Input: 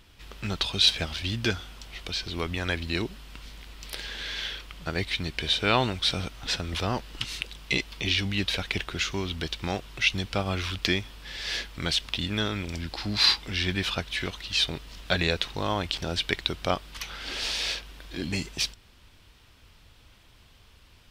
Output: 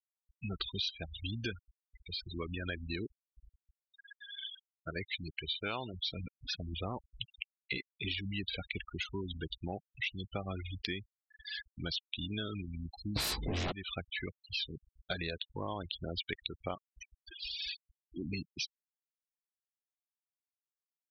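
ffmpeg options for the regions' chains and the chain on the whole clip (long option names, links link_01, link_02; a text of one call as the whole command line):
ffmpeg -i in.wav -filter_complex "[0:a]asettb=1/sr,asplit=3[link_01][link_02][link_03];[link_01]atrim=end=3.754[link_04];[link_02]atrim=start=3.75:end=5.94,asetpts=PTS-STARTPTS,afade=type=in:duration=0.004:curve=qsin,afade=type=out:start_time=2.186:duration=0.004:curve=qsin,lowshelf=frequency=310:gain=-3.5,acrusher=bits=8:dc=4:mix=0:aa=0.000001[link_05];[link_03]atrim=start=5.936[link_06];[link_04][link_05]acrossfade=duration=0.004:curve1=hsin:curve2=qsin[link_07];[link_07][link_06]acrossfade=duration=0.004:curve1=qsin:curve2=hsin,asettb=1/sr,asplit=3[link_08][link_09][link_10];[link_08]atrim=end=13.164[link_11];[link_09]atrim=start=13.16:end=13.72,asetpts=PTS-STARTPTS,afade=type=in:duration=0.004:curve=qsin,afade=type=out:start_time=0.556:duration=0.004:curve=qsin,tiltshelf=frequency=700:gain=8,aeval=exprs='0.251*sin(PI/2*5.62*val(0)/0.251)':channel_layout=same,asplit=2[link_12][link_13];[link_13]adelay=14,volume=-7dB[link_14];[link_12][link_14]amix=inputs=2:normalize=0,atrim=end_sample=24696[link_15];[link_10]atrim=start=13.716[link_16];[link_11][link_15]acrossfade=duration=0.004:curve1=hsin:curve2=qsin[link_17];[link_17][link_16]acrossfade=duration=0.004:curve1=qsin:curve2=hsin,lowshelf=frequency=60:gain=-4.5,afftfilt=real='re*gte(hypot(re,im),0.0708)':imag='im*gte(hypot(re,im),0.0708)':win_size=1024:overlap=0.75,acompressor=threshold=-29dB:ratio=6,volume=-5dB" out.wav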